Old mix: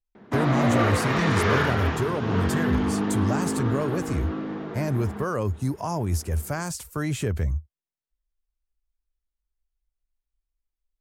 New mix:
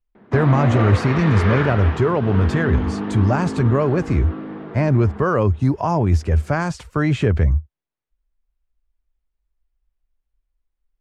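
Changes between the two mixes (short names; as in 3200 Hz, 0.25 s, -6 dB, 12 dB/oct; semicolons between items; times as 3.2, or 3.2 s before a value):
speech +9.0 dB; master: add LPF 3100 Hz 12 dB/oct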